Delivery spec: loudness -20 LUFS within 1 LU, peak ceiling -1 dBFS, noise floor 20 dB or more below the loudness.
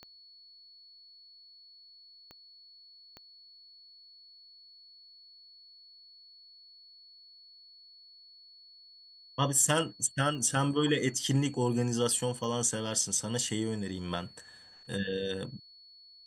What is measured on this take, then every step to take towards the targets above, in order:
clicks 5; steady tone 4400 Hz; tone level -53 dBFS; loudness -30.0 LUFS; peak -12.0 dBFS; loudness target -20.0 LUFS
-> de-click; notch 4400 Hz, Q 30; gain +10 dB

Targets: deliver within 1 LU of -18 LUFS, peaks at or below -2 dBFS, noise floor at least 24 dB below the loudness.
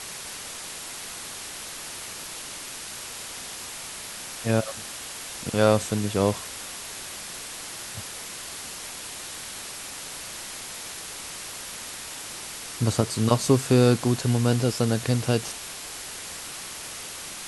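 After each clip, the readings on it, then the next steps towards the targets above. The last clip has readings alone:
noise floor -38 dBFS; noise floor target -53 dBFS; loudness -28.5 LUFS; peak -4.0 dBFS; loudness target -18.0 LUFS
-> denoiser 15 dB, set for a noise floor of -38 dBFS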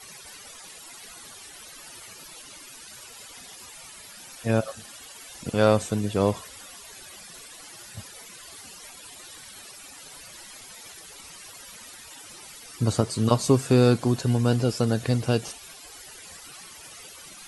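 noise floor -45 dBFS; noise floor target -48 dBFS
-> denoiser 6 dB, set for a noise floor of -45 dBFS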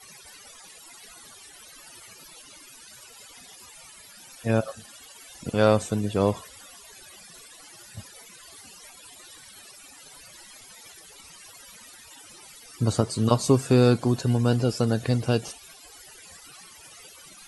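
noise floor -49 dBFS; loudness -24.0 LUFS; peak -4.5 dBFS; loudness target -18.0 LUFS
-> gain +6 dB; limiter -2 dBFS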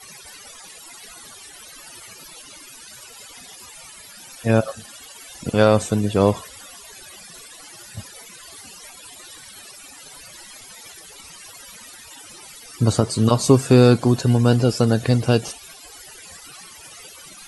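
loudness -18.5 LUFS; peak -2.0 dBFS; noise floor -43 dBFS

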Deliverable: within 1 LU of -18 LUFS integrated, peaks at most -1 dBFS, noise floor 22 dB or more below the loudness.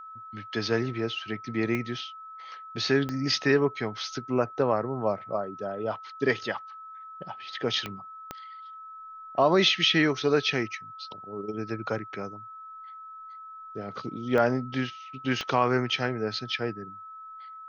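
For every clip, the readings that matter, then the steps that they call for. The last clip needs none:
clicks 6; steady tone 1300 Hz; tone level -41 dBFS; loudness -28.0 LUFS; peak -9.5 dBFS; loudness target -18.0 LUFS
-> de-click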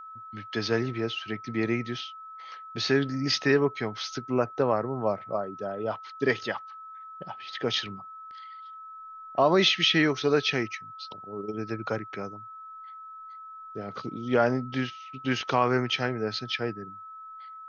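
clicks 0; steady tone 1300 Hz; tone level -41 dBFS
-> notch 1300 Hz, Q 30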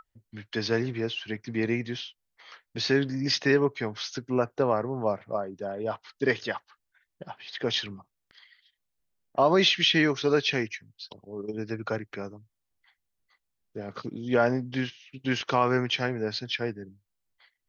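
steady tone none; loudness -27.5 LUFS; peak -9.5 dBFS; loudness target -18.0 LUFS
-> gain +9.5 dB; limiter -1 dBFS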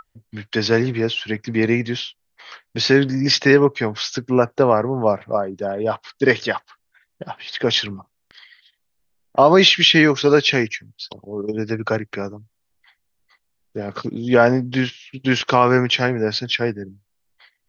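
loudness -18.5 LUFS; peak -1.0 dBFS; noise floor -72 dBFS

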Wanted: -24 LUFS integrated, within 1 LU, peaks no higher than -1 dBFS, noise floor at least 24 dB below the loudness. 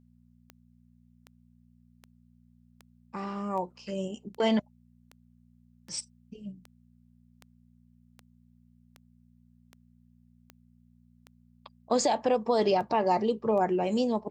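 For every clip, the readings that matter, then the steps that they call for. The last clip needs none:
clicks 18; hum 60 Hz; harmonics up to 240 Hz; hum level -58 dBFS; loudness -28.5 LUFS; peak -14.0 dBFS; loudness target -24.0 LUFS
-> de-click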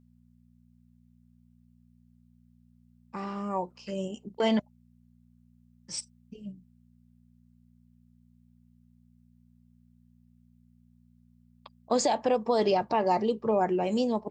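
clicks 0; hum 60 Hz; harmonics up to 240 Hz; hum level -58 dBFS
-> de-hum 60 Hz, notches 4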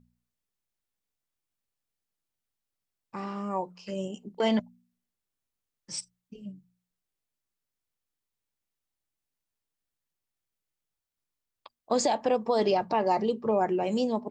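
hum none; loudness -29.0 LUFS; peak -13.5 dBFS; loudness target -24.0 LUFS
-> gain +5 dB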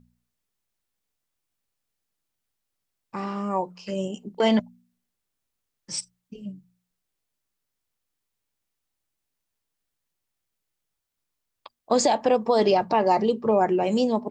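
loudness -24.0 LUFS; peak -8.5 dBFS; noise floor -82 dBFS

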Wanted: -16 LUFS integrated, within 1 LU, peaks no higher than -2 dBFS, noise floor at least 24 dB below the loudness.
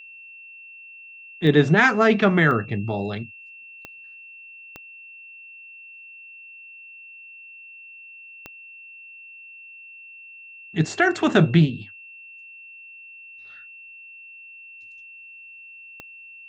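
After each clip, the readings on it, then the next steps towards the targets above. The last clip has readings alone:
clicks 6; steady tone 2700 Hz; tone level -41 dBFS; loudness -19.5 LUFS; peak -3.5 dBFS; loudness target -16.0 LUFS
-> de-click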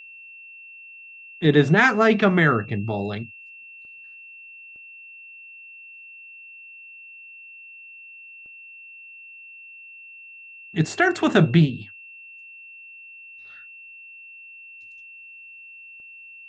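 clicks 0; steady tone 2700 Hz; tone level -41 dBFS
-> notch 2700 Hz, Q 30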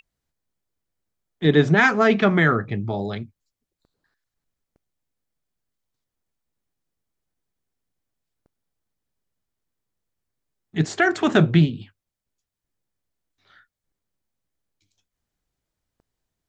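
steady tone none; loudness -19.5 LUFS; peak -4.0 dBFS; loudness target -16.0 LUFS
-> gain +3.5 dB; limiter -2 dBFS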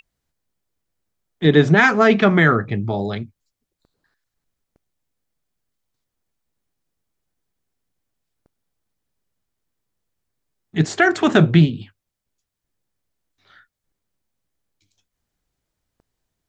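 loudness -16.0 LUFS; peak -2.0 dBFS; noise floor -82 dBFS

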